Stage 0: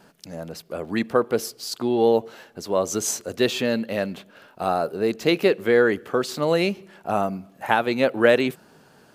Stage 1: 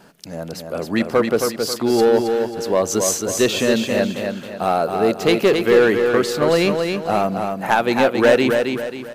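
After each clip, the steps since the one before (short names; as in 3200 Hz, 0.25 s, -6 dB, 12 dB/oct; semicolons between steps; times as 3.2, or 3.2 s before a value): in parallel at -5 dB: wavefolder -15.5 dBFS; on the sum: feedback echo 0.27 s, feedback 39%, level -5 dB; gain +1 dB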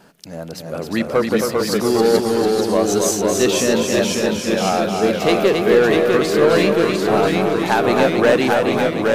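echoes that change speed 0.329 s, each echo -1 st, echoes 3; gain -1 dB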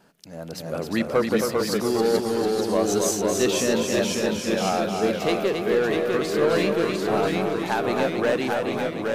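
AGC gain up to 10 dB; gain -9 dB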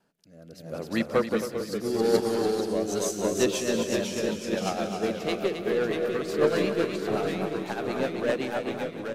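rotary speaker horn 0.75 Hz, later 8 Hz, at 2.64; echo 0.185 s -10.5 dB; upward expander 1.5:1, over -37 dBFS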